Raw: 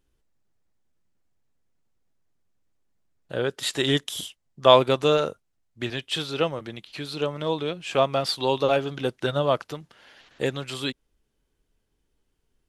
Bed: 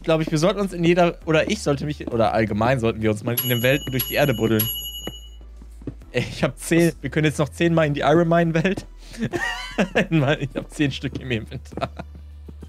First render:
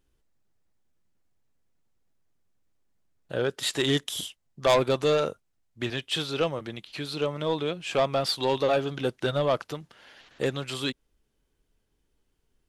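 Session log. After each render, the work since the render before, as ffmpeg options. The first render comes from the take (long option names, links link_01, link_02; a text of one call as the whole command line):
ffmpeg -i in.wav -af "asoftclip=type=tanh:threshold=-15.5dB" out.wav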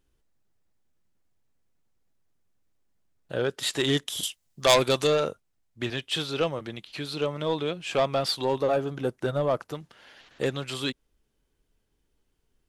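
ffmpeg -i in.wav -filter_complex "[0:a]asettb=1/sr,asplit=3[link_01][link_02][link_03];[link_01]atrim=end=4.234[link_04];[link_02]atrim=start=4.23:end=5.07,asetpts=PTS-STARTPTS,afade=type=in:duration=0.004:curve=qsin,afade=type=out:start_time=0.836:duration=0.004:curve=qsin,highshelf=frequency=2800:gain=11.5[link_05];[link_03]atrim=start=5.066[link_06];[link_04][link_05]acrossfade=duration=0.004:curve1=hsin:curve2=qsin[link_07];[link_07][link_06]acrossfade=duration=0.004:curve1=qsin:curve2=hsin,asettb=1/sr,asplit=3[link_08][link_09][link_10];[link_08]atrim=end=8.424[link_11];[link_09]atrim=start=8.42:end=9.73,asetpts=PTS-STARTPTS,afade=type=in:duration=0.004:curve=qsin,afade=type=out:start_time=1.306:duration=0.004:curve=qsin,equalizer=frequency=3500:width_type=o:width=1.7:gain=-9.5[link_12];[link_10]atrim=start=9.726[link_13];[link_11][link_12]acrossfade=duration=0.004:curve1=hsin:curve2=qsin[link_14];[link_14][link_13]acrossfade=duration=0.004:curve1=qsin:curve2=hsin" out.wav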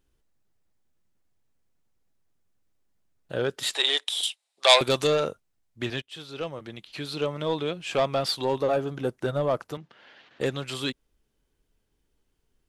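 ffmpeg -i in.wav -filter_complex "[0:a]asettb=1/sr,asplit=3[link_01][link_02][link_03];[link_01]atrim=end=3.744[link_04];[link_02]atrim=start=3.74:end=4.81,asetpts=PTS-STARTPTS,afade=type=in:duration=0.004:curve=qsin,afade=type=out:start_time=1.066:duration=0.004:curve=qsin,highpass=frequency=500:width=0.5412,highpass=frequency=500:width=1.3066,equalizer=frequency=800:width_type=q:width=4:gain=5,equalizer=frequency=2400:width_type=q:width=4:gain=5,equalizer=frequency=3800:width_type=q:width=4:gain=9,equalizer=frequency=6400:width_type=q:width=4:gain=-5,equalizer=frequency=9200:width_type=q:width=4:gain=4,lowpass=frequency=10000:width=0.5412,lowpass=frequency=10000:width=1.3066[link_05];[link_03]atrim=start=4.806[link_06];[link_04][link_05]acrossfade=duration=0.004:curve1=hsin:curve2=qsin[link_07];[link_07][link_06]acrossfade=duration=0.004:curve1=qsin:curve2=hsin,asettb=1/sr,asplit=3[link_08][link_09][link_10];[link_08]atrim=end=9.774[link_11];[link_09]atrim=start=9.77:end=10.41,asetpts=PTS-STARTPTS,afade=type=in:duration=0.004:curve=qsin,afade=type=out:start_time=0.636:duration=0.004:curve=qsin,highpass=130,lowpass=3900[link_12];[link_10]atrim=start=10.406[link_13];[link_11][link_12]acrossfade=duration=0.004:curve1=hsin:curve2=qsin[link_14];[link_14][link_13]acrossfade=duration=0.004:curve1=qsin:curve2=hsin,asplit=2[link_15][link_16];[link_15]atrim=end=6.02,asetpts=PTS-STARTPTS,afade=type=out:start_time=6.016:duration=0.004:curve=hsin:silence=0.11885[link_17];[link_16]atrim=start=6.02,asetpts=PTS-STARTPTS,afade=type=in:duration=1.06:silence=0.11885[link_18];[link_17][link_18]concat=n=2:v=0:a=1" out.wav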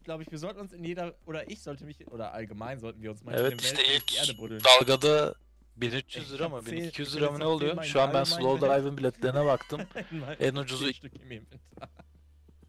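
ffmpeg -i in.wav -i bed.wav -filter_complex "[1:a]volume=-19dB[link_01];[0:a][link_01]amix=inputs=2:normalize=0" out.wav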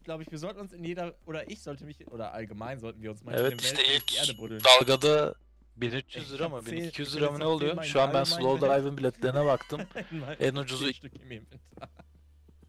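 ffmpeg -i in.wav -filter_complex "[0:a]asettb=1/sr,asplit=3[link_01][link_02][link_03];[link_01]atrim=end=5.154[link_04];[link_02]atrim=start=5.15:end=6.18,asetpts=PTS-STARTPTS,afade=type=in:duration=0.004:curve=qsin,afade=type=out:start_time=1.026:duration=0.004:curve=qsin,aemphasis=mode=reproduction:type=50kf[link_05];[link_03]atrim=start=6.176[link_06];[link_04][link_05]acrossfade=duration=0.004:curve1=hsin:curve2=qsin[link_07];[link_07][link_06]acrossfade=duration=0.004:curve1=qsin:curve2=hsin" out.wav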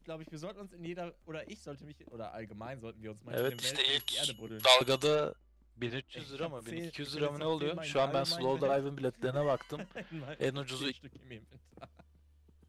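ffmpeg -i in.wav -af "volume=-6dB" out.wav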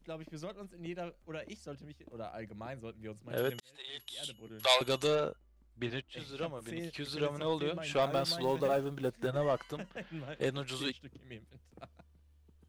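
ffmpeg -i in.wav -filter_complex "[0:a]asettb=1/sr,asplit=3[link_01][link_02][link_03];[link_01]atrim=end=8.024[link_04];[link_02]atrim=start=8.02:end=9.28,asetpts=PTS-STARTPTS,afade=type=in:duration=0.004:curve=qsin,afade=type=out:start_time=1.256:duration=0.004:curve=qsin,acrusher=bits=7:mode=log:mix=0:aa=0.000001[link_05];[link_03]atrim=start=9.276[link_06];[link_04][link_05]acrossfade=duration=0.004:curve1=hsin:curve2=qsin[link_07];[link_07][link_06]acrossfade=duration=0.004:curve1=qsin:curve2=hsin,asplit=2[link_08][link_09];[link_08]atrim=end=3.6,asetpts=PTS-STARTPTS,afade=type=out:start_time=3.596:duration=0.004:curve=hsin[link_10];[link_09]atrim=start=3.6,asetpts=PTS-STARTPTS,afade=type=in:duration=1.69[link_11];[link_10][link_11]concat=n=2:v=0:a=1" out.wav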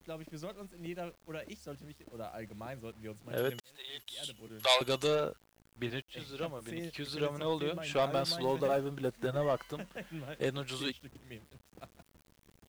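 ffmpeg -i in.wav -af "acrusher=bits=9:mix=0:aa=0.000001" out.wav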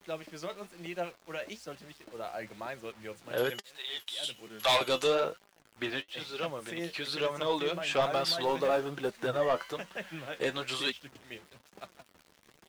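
ffmpeg -i in.wav -filter_complex "[0:a]asplit=2[link_01][link_02];[link_02]highpass=frequency=720:poles=1,volume=18dB,asoftclip=type=tanh:threshold=-12dB[link_03];[link_01][link_03]amix=inputs=2:normalize=0,lowpass=frequency=5300:poles=1,volume=-6dB,flanger=delay=4.9:depth=6.8:regen=53:speed=1.1:shape=sinusoidal" out.wav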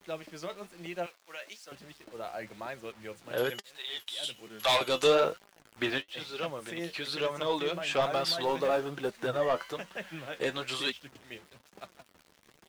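ffmpeg -i in.wav -filter_complex "[0:a]asettb=1/sr,asplit=3[link_01][link_02][link_03];[link_01]atrim=end=1.064[link_04];[link_02]atrim=start=1.06:end=1.72,asetpts=PTS-STARTPTS,afade=type=in:duration=0.004:curve=qsin,afade=type=out:start_time=0.656:duration=0.004:curve=qsin,highpass=frequency=1400:poles=1[link_05];[link_03]atrim=start=1.716[link_06];[link_04][link_05]acrossfade=duration=0.004:curve1=hsin:curve2=qsin[link_07];[link_07][link_06]acrossfade=duration=0.004:curve1=qsin:curve2=hsin,asplit=3[link_08][link_09][link_10];[link_08]atrim=end=5.032[link_11];[link_09]atrim=start=5.028:end=5.982,asetpts=PTS-STARTPTS,volume=4dB[link_12];[link_10]atrim=start=5.978[link_13];[link_11][link_12]acrossfade=duration=0.004:curve1=hsin:curve2=hsin[link_14];[link_14][link_13]acrossfade=duration=0.004:curve1=hsin:curve2=hsin" out.wav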